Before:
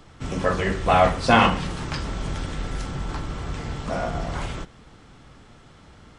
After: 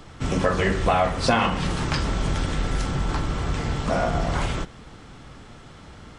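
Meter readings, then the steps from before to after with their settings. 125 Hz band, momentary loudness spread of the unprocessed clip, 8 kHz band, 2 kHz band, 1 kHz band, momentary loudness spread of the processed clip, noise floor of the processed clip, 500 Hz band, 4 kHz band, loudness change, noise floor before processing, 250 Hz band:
+2.5 dB, 15 LU, +3.5 dB, -1.0 dB, -2.5 dB, 6 LU, -45 dBFS, -0.5 dB, +0.5 dB, -0.5 dB, -50 dBFS, +0.5 dB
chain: compressor 6:1, threshold -22 dBFS, peak gain reduction 11 dB; gain +5 dB

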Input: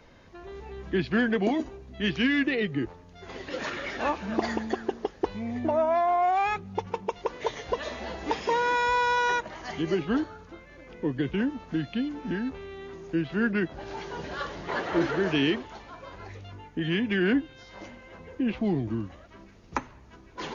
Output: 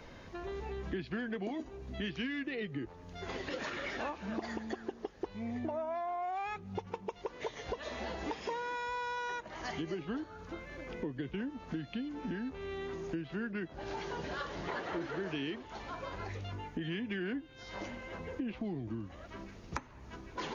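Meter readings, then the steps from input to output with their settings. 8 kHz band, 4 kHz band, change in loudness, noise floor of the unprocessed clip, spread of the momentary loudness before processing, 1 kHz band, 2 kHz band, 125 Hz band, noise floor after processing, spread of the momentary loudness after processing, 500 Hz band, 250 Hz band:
n/a, -9.5 dB, -11.5 dB, -51 dBFS, 19 LU, -11.5 dB, -10.5 dB, -8.5 dB, -53 dBFS, 7 LU, -10.5 dB, -10.5 dB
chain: compressor 5:1, threshold -40 dBFS, peak gain reduction 18 dB; gain +3 dB

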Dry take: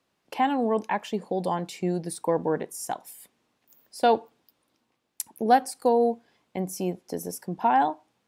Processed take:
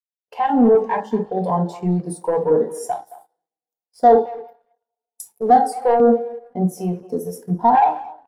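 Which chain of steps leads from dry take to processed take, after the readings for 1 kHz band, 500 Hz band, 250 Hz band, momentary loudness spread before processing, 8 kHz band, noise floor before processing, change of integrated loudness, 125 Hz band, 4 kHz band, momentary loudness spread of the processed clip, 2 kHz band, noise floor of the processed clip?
+7.5 dB, +9.0 dB, +8.5 dB, 14 LU, -1.0 dB, -75 dBFS, +8.0 dB, +10.0 dB, n/a, 13 LU, +0.5 dB, under -85 dBFS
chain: two-slope reverb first 0.45 s, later 2.8 s, from -22 dB, DRR 1.5 dB; sample leveller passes 3; LFO notch square 2 Hz 260–2500 Hz; speakerphone echo 0.22 s, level -10 dB; spectral expander 1.5:1

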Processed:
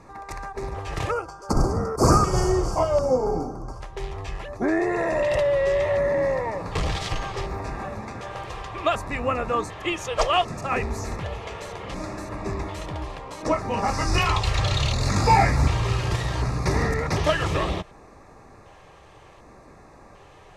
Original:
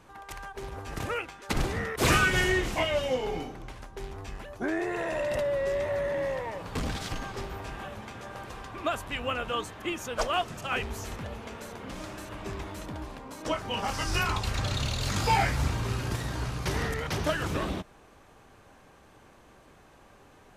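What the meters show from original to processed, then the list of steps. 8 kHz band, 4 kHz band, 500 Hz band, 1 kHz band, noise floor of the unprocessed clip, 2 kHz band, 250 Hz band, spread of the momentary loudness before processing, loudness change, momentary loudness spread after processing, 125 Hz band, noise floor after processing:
+3.5 dB, +2.5 dB, +7.5 dB, +7.5 dB, -56 dBFS, +1.0 dB, +6.5 dB, 16 LU, +6.0 dB, 13 LU, +7.5 dB, -49 dBFS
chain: spectral gain 1.11–3.81, 1600–4400 Hz -22 dB; high shelf 9800 Hz +9 dB; LFO notch square 0.67 Hz 240–3100 Hz; Butterworth band-stop 1500 Hz, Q 7.9; air absorption 82 m; gain +8 dB

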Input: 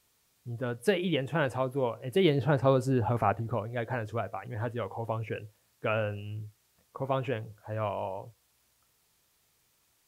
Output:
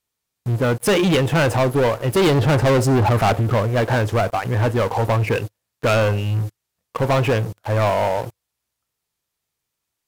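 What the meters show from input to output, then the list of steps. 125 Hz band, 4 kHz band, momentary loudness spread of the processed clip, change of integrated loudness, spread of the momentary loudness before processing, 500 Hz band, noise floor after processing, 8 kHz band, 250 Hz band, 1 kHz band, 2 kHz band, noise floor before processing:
+14.0 dB, +12.5 dB, 9 LU, +12.0 dB, 14 LU, +11.0 dB, -80 dBFS, n/a, +11.0 dB, +11.5 dB, +12.5 dB, -71 dBFS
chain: sample leveller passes 5

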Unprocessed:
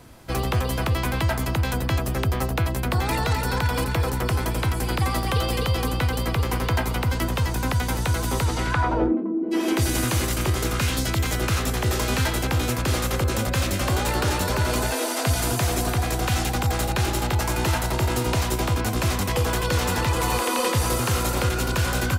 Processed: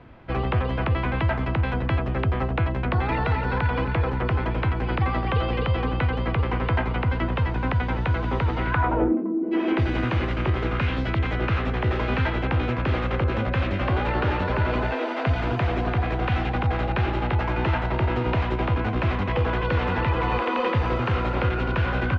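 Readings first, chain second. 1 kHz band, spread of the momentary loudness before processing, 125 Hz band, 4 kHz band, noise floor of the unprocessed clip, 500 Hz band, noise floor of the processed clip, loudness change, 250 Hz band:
0.0 dB, 2 LU, 0.0 dB, -8.0 dB, -26 dBFS, 0.0 dB, -27 dBFS, -1.0 dB, 0.0 dB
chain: LPF 2800 Hz 24 dB/oct

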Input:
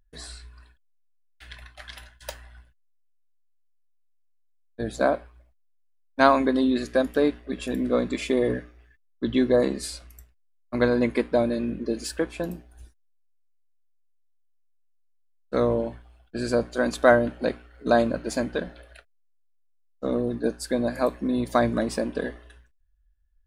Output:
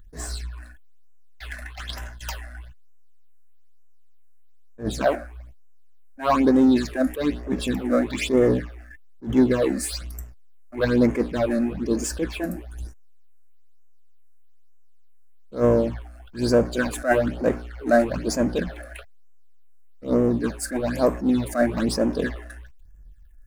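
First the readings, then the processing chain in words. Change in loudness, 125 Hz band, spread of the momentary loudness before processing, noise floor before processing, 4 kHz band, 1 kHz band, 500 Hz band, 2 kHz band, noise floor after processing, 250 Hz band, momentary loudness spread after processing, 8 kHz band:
+2.0 dB, +5.5 dB, 19 LU, -64 dBFS, +2.0 dB, -1.5 dB, +1.0 dB, -0.5 dB, -45 dBFS, +4.0 dB, 18 LU, +6.0 dB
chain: power-law curve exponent 0.7; phaser stages 8, 1.1 Hz, lowest notch 120–4100 Hz; attack slew limiter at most 210 dB/s

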